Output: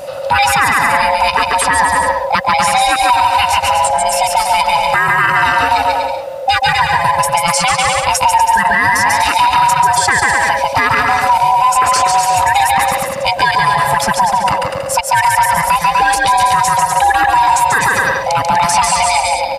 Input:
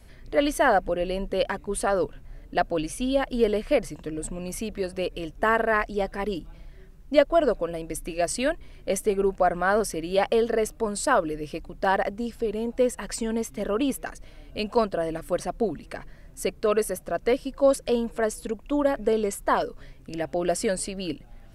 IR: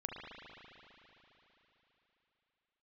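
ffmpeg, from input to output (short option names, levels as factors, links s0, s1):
-filter_complex "[0:a]afftfilt=real='real(if(lt(b,1008),b+24*(1-2*mod(floor(b/24),2)),b),0)':imag='imag(if(lt(b,1008),b+24*(1-2*mod(floor(b/24),2)),b),0)':win_size=2048:overlap=0.75,highpass=63,acrossover=split=860[s0][s1];[s0]acompressor=threshold=0.0158:ratio=10[s2];[s2][s1]amix=inputs=2:normalize=0,atempo=1.1,aecho=1:1:140|245|323.8|382.8|427.1:0.631|0.398|0.251|0.158|0.1,acrossover=split=89|790|5500[s3][s4][s5][s6];[s3]acompressor=threshold=0.00158:ratio=4[s7];[s4]acompressor=threshold=0.00891:ratio=4[s8];[s5]acompressor=threshold=0.0447:ratio=4[s9];[s6]acompressor=threshold=0.00708:ratio=4[s10];[s7][s8][s9][s10]amix=inputs=4:normalize=0,alimiter=level_in=15.8:limit=0.891:release=50:level=0:latency=1,volume=0.794"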